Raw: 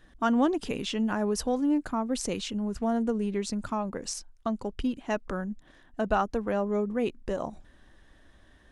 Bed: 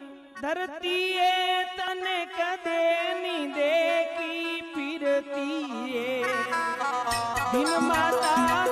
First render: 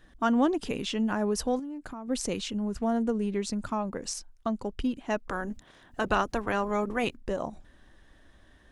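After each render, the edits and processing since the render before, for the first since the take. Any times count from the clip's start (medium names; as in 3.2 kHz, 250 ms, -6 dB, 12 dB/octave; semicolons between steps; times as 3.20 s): 1.59–2.08 s: compression 16:1, threshold -35 dBFS; 5.29–7.15 s: spectral peaks clipped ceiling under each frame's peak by 16 dB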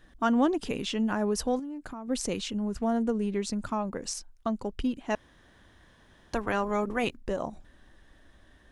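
5.15–6.33 s: room tone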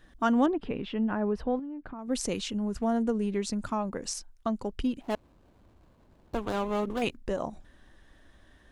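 0.46–1.99 s: distance through air 420 m; 5.01–7.02 s: median filter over 25 samples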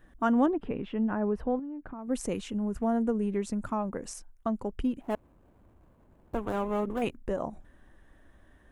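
peaking EQ 4.5 kHz -13 dB 1.3 oct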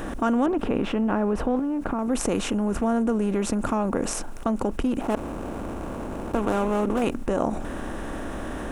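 spectral levelling over time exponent 0.6; level flattener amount 50%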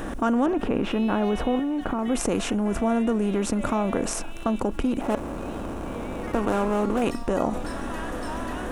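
add bed -14 dB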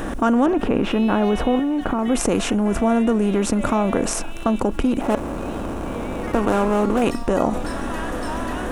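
trim +5 dB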